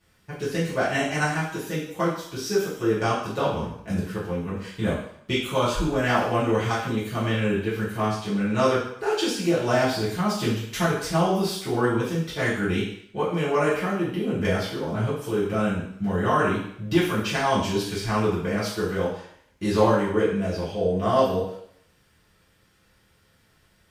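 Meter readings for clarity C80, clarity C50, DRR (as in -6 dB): 6.5 dB, 3.0 dB, -10.5 dB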